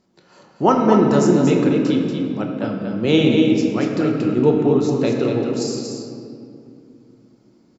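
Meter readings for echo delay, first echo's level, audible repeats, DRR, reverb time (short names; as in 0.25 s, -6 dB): 0.235 s, -6.5 dB, 1, -1.0 dB, 2.6 s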